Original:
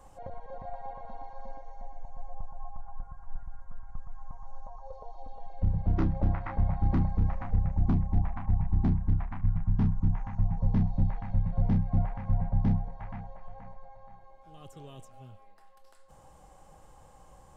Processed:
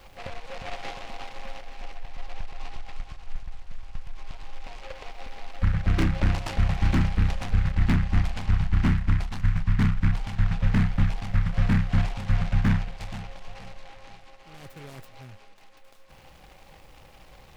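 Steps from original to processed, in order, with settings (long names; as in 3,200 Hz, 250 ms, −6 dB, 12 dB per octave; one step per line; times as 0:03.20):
short delay modulated by noise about 1,500 Hz, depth 0.18 ms
level +4 dB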